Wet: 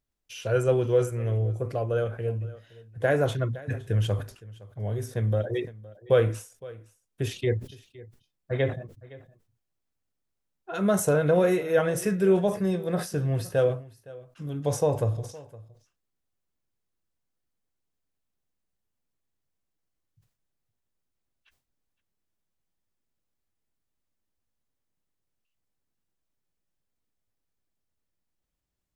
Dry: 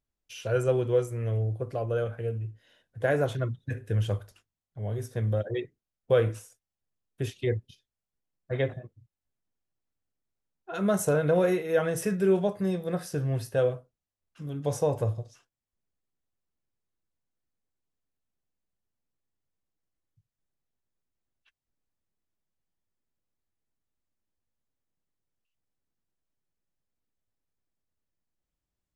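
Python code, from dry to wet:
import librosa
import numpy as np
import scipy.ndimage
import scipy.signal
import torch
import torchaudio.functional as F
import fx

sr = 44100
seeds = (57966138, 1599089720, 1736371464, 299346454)

p1 = x + fx.echo_single(x, sr, ms=514, db=-20.5, dry=0)
p2 = fx.sustainer(p1, sr, db_per_s=140.0)
y = p2 * 10.0 ** (2.0 / 20.0)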